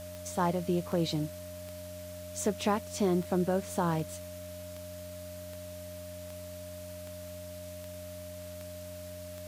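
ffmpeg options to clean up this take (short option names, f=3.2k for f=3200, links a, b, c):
-af "adeclick=t=4,bandreject=f=90.4:t=h:w=4,bandreject=f=180.8:t=h:w=4,bandreject=f=271.2:t=h:w=4,bandreject=f=610:w=30,afwtdn=0.0028"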